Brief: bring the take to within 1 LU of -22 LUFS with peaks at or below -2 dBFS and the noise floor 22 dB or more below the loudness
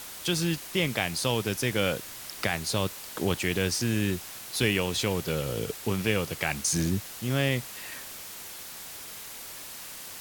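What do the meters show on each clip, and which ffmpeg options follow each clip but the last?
noise floor -42 dBFS; noise floor target -52 dBFS; loudness -29.5 LUFS; peak -9.5 dBFS; loudness target -22.0 LUFS
-> -af "afftdn=nr=10:nf=-42"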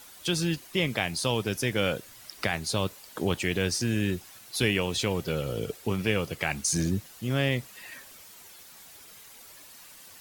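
noise floor -50 dBFS; noise floor target -51 dBFS
-> -af "afftdn=nr=6:nf=-50"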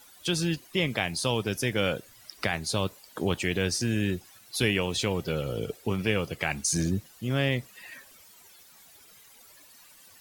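noise floor -55 dBFS; loudness -29.0 LUFS; peak -10.0 dBFS; loudness target -22.0 LUFS
-> -af "volume=7dB"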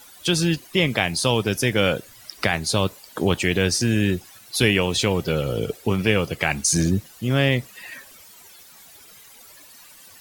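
loudness -22.0 LUFS; peak -3.0 dBFS; noise floor -48 dBFS

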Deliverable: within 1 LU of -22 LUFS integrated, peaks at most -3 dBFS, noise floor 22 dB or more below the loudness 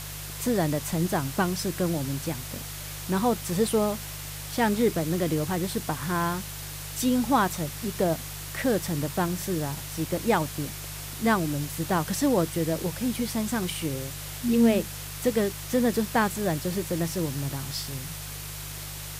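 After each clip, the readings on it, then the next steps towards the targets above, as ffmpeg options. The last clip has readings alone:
hum 50 Hz; harmonics up to 150 Hz; hum level -38 dBFS; noise floor -37 dBFS; noise floor target -50 dBFS; loudness -27.5 LUFS; peak -10.5 dBFS; loudness target -22.0 LUFS
-> -af "bandreject=f=50:t=h:w=4,bandreject=f=100:t=h:w=4,bandreject=f=150:t=h:w=4"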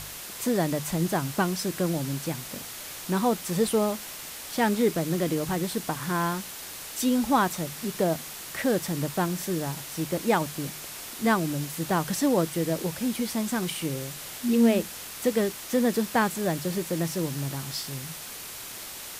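hum none; noise floor -40 dBFS; noise floor target -50 dBFS
-> -af "afftdn=nr=10:nf=-40"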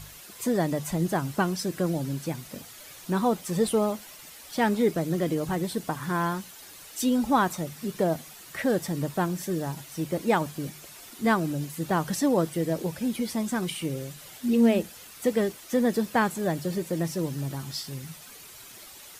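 noise floor -47 dBFS; noise floor target -50 dBFS
-> -af "afftdn=nr=6:nf=-47"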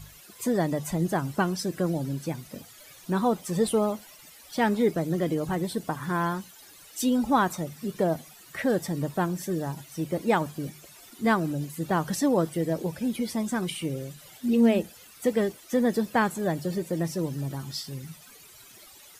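noise floor -51 dBFS; loudness -28.0 LUFS; peak -11.0 dBFS; loudness target -22.0 LUFS
-> -af "volume=6dB"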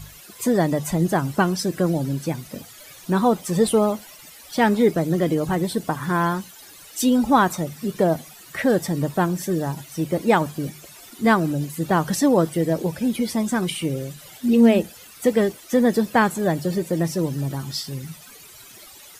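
loudness -22.0 LUFS; peak -5.0 dBFS; noise floor -45 dBFS

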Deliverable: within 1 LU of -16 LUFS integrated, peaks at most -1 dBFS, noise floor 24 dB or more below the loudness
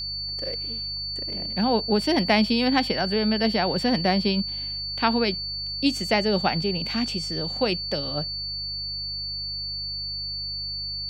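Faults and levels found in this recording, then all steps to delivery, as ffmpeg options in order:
hum 50 Hz; harmonics up to 150 Hz; hum level -39 dBFS; steady tone 4500 Hz; tone level -29 dBFS; loudness -24.5 LUFS; peak -5.5 dBFS; loudness target -16.0 LUFS
-> -af "bandreject=f=50:t=h:w=4,bandreject=f=100:t=h:w=4,bandreject=f=150:t=h:w=4"
-af "bandreject=f=4.5k:w=30"
-af "volume=8.5dB,alimiter=limit=-1dB:level=0:latency=1"

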